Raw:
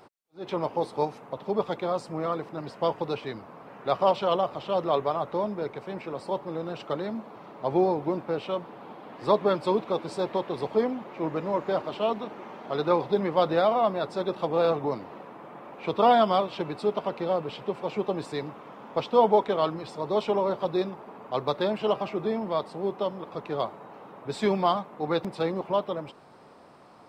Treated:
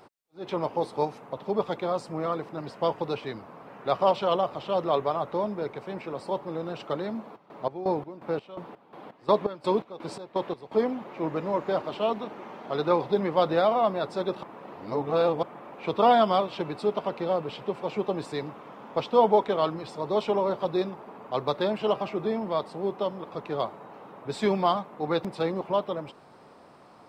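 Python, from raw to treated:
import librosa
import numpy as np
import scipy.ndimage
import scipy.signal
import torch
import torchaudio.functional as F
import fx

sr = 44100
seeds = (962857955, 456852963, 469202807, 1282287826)

y = fx.chopper(x, sr, hz=2.8, depth_pct=80, duty_pct=50, at=(7.35, 10.83), fade=0.02)
y = fx.edit(y, sr, fx.reverse_span(start_s=14.43, length_s=1.0), tone=tone)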